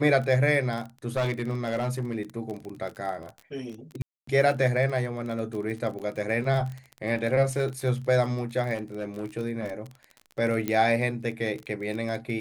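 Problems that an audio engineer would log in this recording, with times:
surface crackle 28 per second −32 dBFS
0:01.07–0:02.21: clipping −22 dBFS
0:04.02–0:04.27: drop-out 254 ms
0:05.99–0:06.00: drop-out 7.1 ms
0:08.74–0:09.26: clipping −26.5 dBFS
0:10.68: click −14 dBFS

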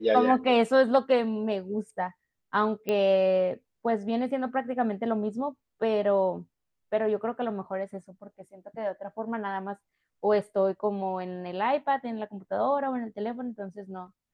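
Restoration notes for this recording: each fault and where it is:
0:02.89: click −16 dBFS

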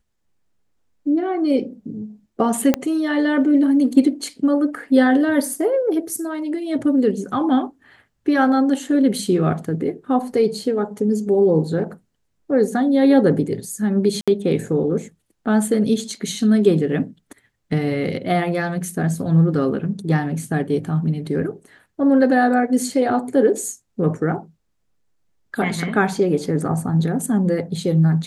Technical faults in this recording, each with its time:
0:02.74: click −4 dBFS
0:14.21–0:14.28: drop-out 66 ms

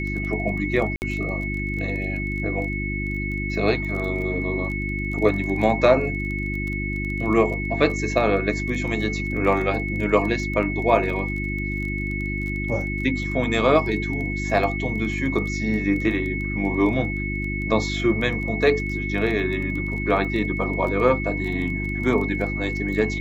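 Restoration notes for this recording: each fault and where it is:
surface crackle 18 per second −30 dBFS
mains hum 50 Hz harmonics 7 −28 dBFS
whistle 2,200 Hz −29 dBFS
0:00.96–0:01.02: drop-out 59 ms

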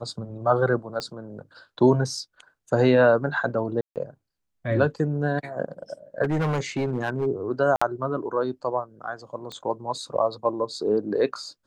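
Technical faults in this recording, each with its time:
0:01.00: click −17 dBFS
0:03.81–0:03.96: drop-out 148 ms
0:06.23–0:07.27: clipping −20.5 dBFS
0:07.76–0:07.82: drop-out 55 ms
0:09.52: click −22 dBFS

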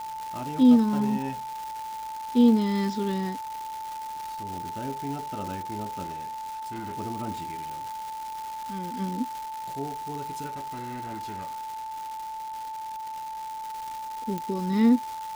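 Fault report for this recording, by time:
surface crackle 540 per second −33 dBFS
whistle 880 Hz −33 dBFS
0:06.03–0:06.98: clipping −31.5 dBFS
0:10.46–0:13.61: clipping −32 dBFS
0:14.38: click −18 dBFS

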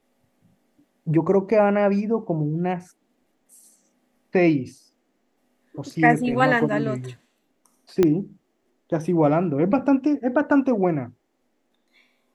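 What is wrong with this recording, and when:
0:08.03: click −7 dBFS

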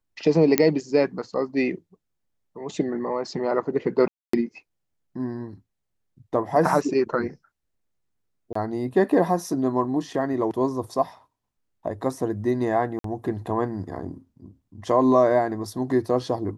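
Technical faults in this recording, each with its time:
0:00.58: click −2 dBFS
0:04.08–0:04.33: drop-out 254 ms
0:08.53–0:08.55: drop-out 24 ms
0:12.99–0:13.04: drop-out 53 ms

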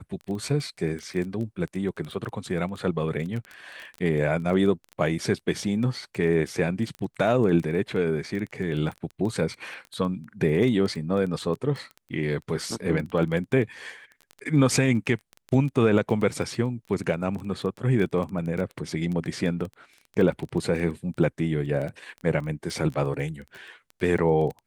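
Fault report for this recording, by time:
surface crackle 13 per second −30 dBFS

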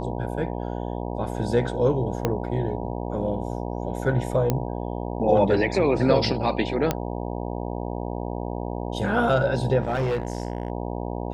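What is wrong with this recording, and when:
mains buzz 60 Hz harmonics 16 −30 dBFS
0:02.25: click −9 dBFS
0:04.50: click −9 dBFS
0:06.91: click −8 dBFS
0:09.82–0:10.70: clipping −20.5 dBFS

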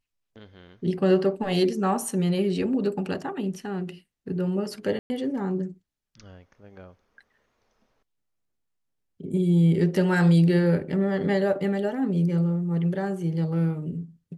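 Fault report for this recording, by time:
0:04.99–0:05.10: drop-out 110 ms

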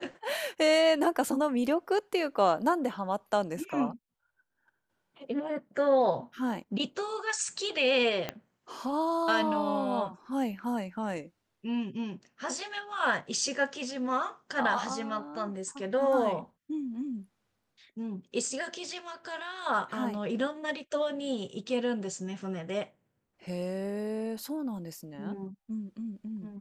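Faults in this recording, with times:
0:08.29: click −17 dBFS

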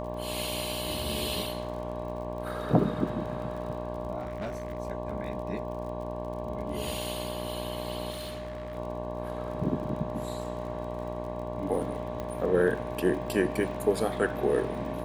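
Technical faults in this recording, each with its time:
mains buzz 60 Hz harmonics 19 −37 dBFS
surface crackle 43 per second −39 dBFS
whistle 610 Hz −37 dBFS
0:04.19–0:04.78: clipping −30 dBFS
0:08.10–0:08.77: clipping −33.5 dBFS
0:12.20: click −22 dBFS

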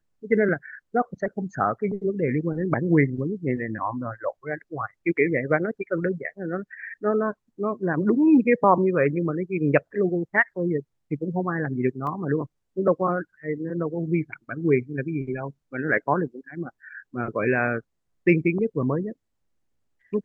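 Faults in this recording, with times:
0:12.07: drop-out 2 ms

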